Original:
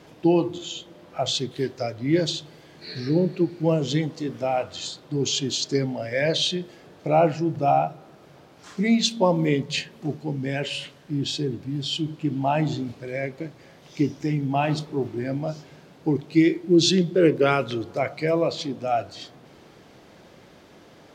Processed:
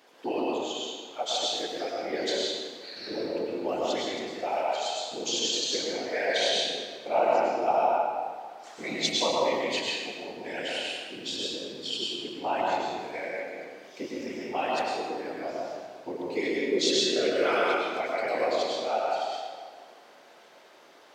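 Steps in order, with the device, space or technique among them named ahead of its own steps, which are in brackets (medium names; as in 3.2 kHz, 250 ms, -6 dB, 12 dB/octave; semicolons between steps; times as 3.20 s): whispering ghost (whisper effect; high-pass 530 Hz 12 dB/octave; reverberation RT60 1.7 s, pre-delay 95 ms, DRR -3.5 dB); trim -5.5 dB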